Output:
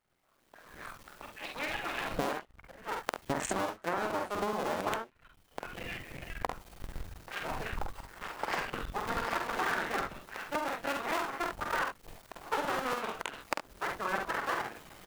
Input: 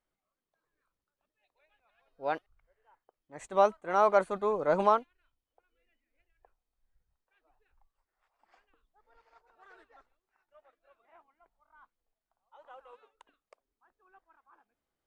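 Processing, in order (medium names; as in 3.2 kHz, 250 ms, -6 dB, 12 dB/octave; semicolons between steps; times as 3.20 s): cycle switcher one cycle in 2, muted; recorder AGC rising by 37 dB/s; on a send: early reflections 47 ms -3.5 dB, 69 ms -9 dB; on the sum: integer overflow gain 9 dB; harmonic-percussive split harmonic -3 dB; compression 16:1, threshold -36 dBFS, peak gain reduction 18 dB; peaking EQ 1.8 kHz +3 dB 2.9 oct; crackling interface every 0.14 s, samples 256, repeat, from 0.88 s; trim +6 dB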